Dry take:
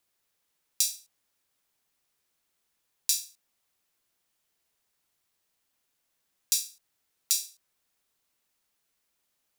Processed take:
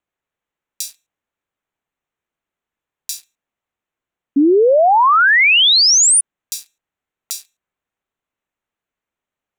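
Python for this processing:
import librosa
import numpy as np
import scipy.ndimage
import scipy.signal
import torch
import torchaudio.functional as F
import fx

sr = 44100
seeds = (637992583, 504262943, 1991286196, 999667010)

y = fx.wiener(x, sr, points=9)
y = fx.spec_paint(y, sr, seeds[0], shape='rise', start_s=4.36, length_s=1.85, low_hz=270.0, high_hz=9900.0, level_db=-11.0)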